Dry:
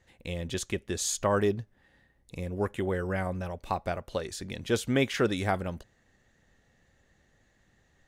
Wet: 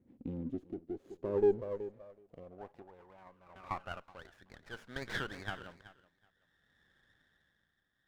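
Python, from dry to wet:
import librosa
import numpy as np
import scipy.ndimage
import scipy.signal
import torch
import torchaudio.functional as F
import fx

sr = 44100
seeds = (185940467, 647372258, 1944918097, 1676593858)

p1 = fx.diode_clip(x, sr, knee_db=-20.0)
p2 = fx.low_shelf(p1, sr, hz=400.0, db=9.5)
p3 = fx.echo_feedback(p2, sr, ms=376, feedback_pct=22, wet_db=-16.0)
p4 = fx.over_compress(p3, sr, threshold_db=-29.0, ratio=-1.0)
p5 = p3 + (p4 * 10.0 ** (-2.5 / 20.0))
p6 = p5 * (1.0 - 0.69 / 2.0 + 0.69 / 2.0 * np.cos(2.0 * np.pi * 0.57 * (np.arange(len(p5)) / sr)))
p7 = fx.level_steps(p6, sr, step_db=19, at=(2.82, 3.56))
p8 = fx.filter_sweep_bandpass(p7, sr, from_hz=260.0, to_hz=1600.0, start_s=0.38, end_s=4.25, q=4.9)
y = fx.running_max(p8, sr, window=9)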